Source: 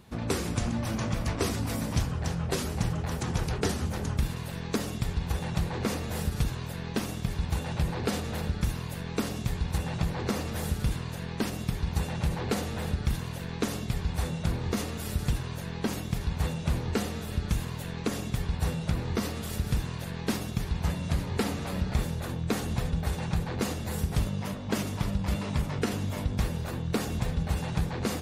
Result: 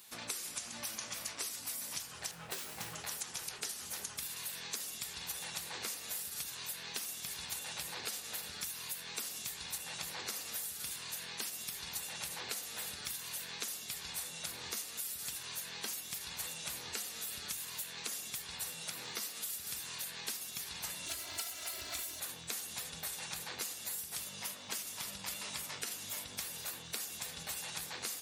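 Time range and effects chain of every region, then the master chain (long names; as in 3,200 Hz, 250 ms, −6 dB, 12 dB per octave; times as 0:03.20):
0:02.31–0:02.95: parametric band 5,900 Hz −9.5 dB 1.7 octaves + double-tracking delay 18 ms −6.5 dB + windowed peak hold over 3 samples
0:18.83–0:19.45: high-pass filter 110 Hz 24 dB per octave + floating-point word with a short mantissa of 8 bits
0:21.06–0:22.20: lower of the sound and its delayed copy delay 1.4 ms + comb filter 3 ms, depth 80%
whole clip: first difference; downward compressor 10 to 1, threshold −48 dBFS; level +10.5 dB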